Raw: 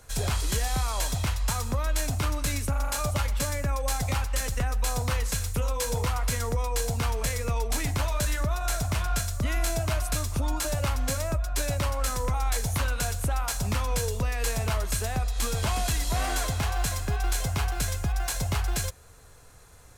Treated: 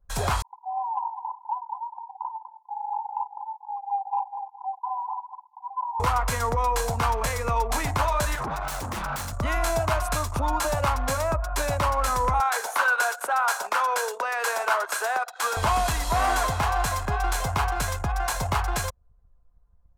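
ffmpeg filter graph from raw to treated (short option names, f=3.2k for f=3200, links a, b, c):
-filter_complex "[0:a]asettb=1/sr,asplit=3[a][b][c];[a]atrim=end=0.424[d];[b]atrim=start=0.42:end=6,asetpts=PTS-STARTPTS,afade=t=in:d=0.004:c=qsin,afade=t=out:st=5.576:d=0.004:c=qsin,asuperpass=centerf=880:order=20:qfactor=3.3,aecho=1:1:203|406|609|812:0.447|0.17|0.0645|0.0245,atrim=end_sample=246078[e];[c]atrim=start=5.996[f];[d][e]acrossfade=d=0.004:c1=hsin:c2=qsin[g];[g][f]acrossfade=d=0.004:c1=qsin:c2=hsin,asettb=1/sr,asplit=3[h][i][j];[h]atrim=end=8.354[k];[i]atrim=start=8.35:end=9.33,asetpts=PTS-STARTPTS,afade=t=in:d=0.004:c=qsin,afade=t=out:st=0.976:d=0.004:c=qsin,acrossover=split=150|3000[l][m][n];[m]acompressor=threshold=-41dB:ratio=1.5:attack=3.2:release=140:knee=2.83:detection=peak[o];[l][o][n]amix=inputs=3:normalize=0,aeval=exprs='0.0376*(abs(mod(val(0)/0.0376+3,4)-2)-1)':c=same[p];[j]atrim=start=9.326[q];[k][p]acrossfade=d=0.004:c1=hsin:c2=qsin[r];[r][q]acrossfade=d=0.004:c1=qsin:c2=hsin,asettb=1/sr,asplit=3[s][t][u];[s]atrim=end=12.404[v];[t]atrim=start=12.4:end=15.57,asetpts=PTS-STARTPTS,afade=t=in:d=0.004:c=qsin,afade=t=out:st=3.166:d=0.004:c=qsin,highpass=f=410:w=0.5412,highpass=f=410:w=1.3066,equalizer=f=1.5k:w=5.6:g=9.5[w];[u]atrim=start=15.566[x];[v][w]acrossfade=d=0.004:c1=hsin:c2=qsin[y];[y][x]acrossfade=d=0.004:c1=qsin:c2=hsin,anlmdn=0.631,equalizer=f=990:w=0.92:g=13.5,acontrast=43,volume=-6.5dB"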